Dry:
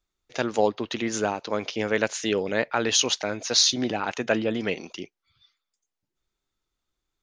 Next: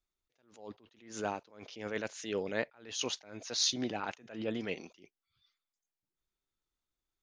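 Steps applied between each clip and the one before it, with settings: attacks held to a fixed rise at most 110 dB/s; trim -8.5 dB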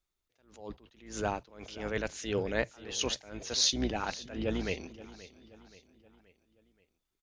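octave divider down 2 oct, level -3 dB; feedback delay 527 ms, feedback 48%, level -17.5 dB; trim +3 dB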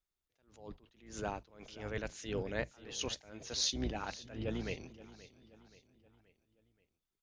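octave divider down 1 oct, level -3 dB; trim -6.5 dB

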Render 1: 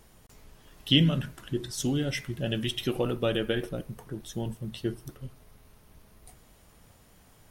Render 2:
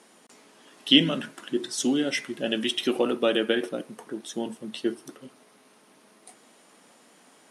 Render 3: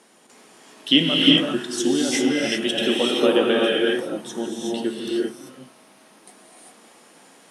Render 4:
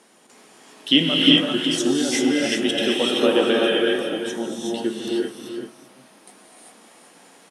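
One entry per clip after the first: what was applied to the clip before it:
elliptic band-pass 240–9900 Hz, stop band 50 dB; trim +5.5 dB
gated-style reverb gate 420 ms rising, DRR -3.5 dB; trim +1 dB
delay 384 ms -8.5 dB

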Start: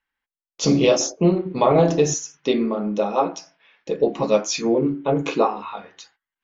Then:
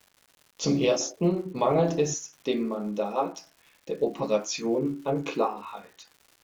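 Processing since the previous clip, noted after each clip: crackle 290 per s -37 dBFS; trim -7 dB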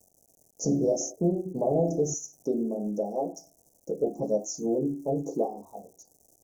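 Chebyshev band-stop 730–6000 Hz, order 4; in parallel at -1.5 dB: compression, threshold -34 dBFS, peak gain reduction 14 dB; on the sum: trim -2.5 dB

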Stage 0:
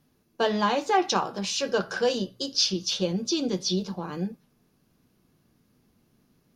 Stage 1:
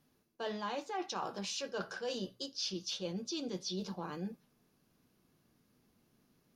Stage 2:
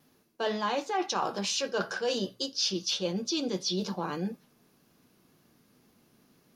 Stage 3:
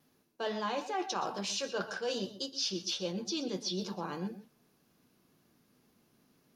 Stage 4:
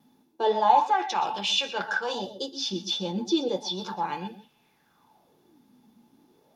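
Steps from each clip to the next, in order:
bass shelf 240 Hz -5 dB; reverse; compression 6:1, threshold -32 dBFS, peak gain reduction 13.5 dB; reverse; trim -4 dB
bass shelf 89 Hz -10 dB; wow and flutter 24 cents; trim +9 dB
reverberation, pre-delay 113 ms, DRR 12.5 dB; trim -5 dB
small resonant body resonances 860/3500 Hz, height 17 dB, ringing for 45 ms; sweeping bell 0.34 Hz 220–2900 Hz +15 dB

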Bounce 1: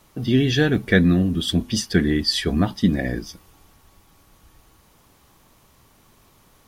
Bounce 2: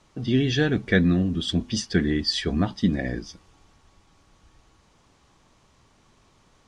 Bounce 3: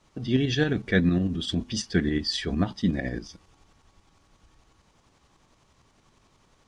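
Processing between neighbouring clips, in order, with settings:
low-pass 7.7 kHz 24 dB/octave; trim -3.5 dB
tremolo saw up 11 Hz, depth 50%

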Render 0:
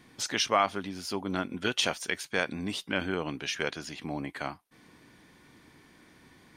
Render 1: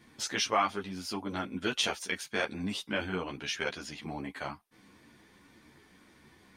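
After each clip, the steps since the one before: three-phase chorus; trim +1 dB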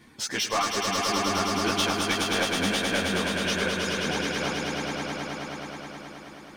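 reverb removal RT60 1.7 s; saturation -26.5 dBFS, distortion -11 dB; on a send: echo with a slow build-up 106 ms, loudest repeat 5, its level -5 dB; on the sum: trim +5.5 dB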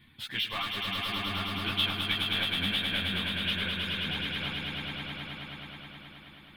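FFT filter 120 Hz 0 dB, 460 Hz -17 dB, 1.6 kHz -7 dB, 3.5 kHz +3 dB, 5.9 kHz -29 dB, 12 kHz -5 dB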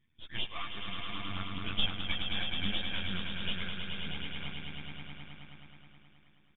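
half-wave rectifier; resampled via 8 kHz; spectral contrast expander 1.5:1; trim +3.5 dB

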